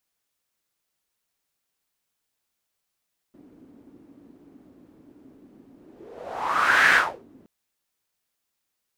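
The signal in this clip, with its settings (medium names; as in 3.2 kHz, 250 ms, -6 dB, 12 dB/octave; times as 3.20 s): whoosh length 4.12 s, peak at 3.59 s, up 1.24 s, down 0.35 s, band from 280 Hz, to 1.7 kHz, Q 4.7, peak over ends 35 dB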